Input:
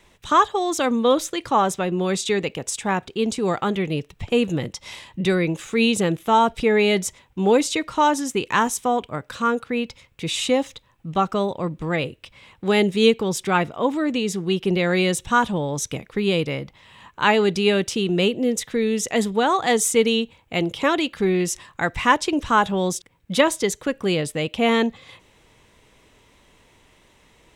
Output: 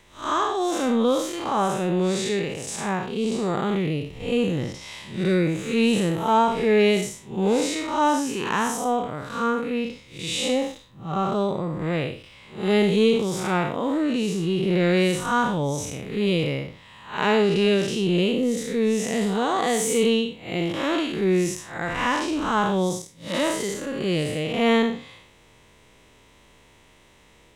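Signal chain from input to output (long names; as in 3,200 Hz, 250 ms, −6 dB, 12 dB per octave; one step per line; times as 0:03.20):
spectrum smeared in time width 171 ms
in parallel at −9 dB: soft clipping −22 dBFS, distortion −11 dB
on the sum: de-essing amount 40%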